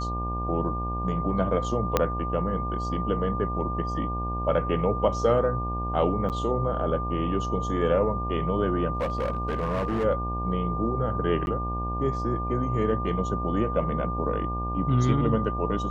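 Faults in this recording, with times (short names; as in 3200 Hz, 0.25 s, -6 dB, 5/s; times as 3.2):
buzz 60 Hz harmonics 18 -31 dBFS
tone 1200 Hz -31 dBFS
1.97 pop -7 dBFS
6.29–6.3 gap 8.6 ms
8.95–10.05 clipped -23 dBFS
11.46–11.47 gap 11 ms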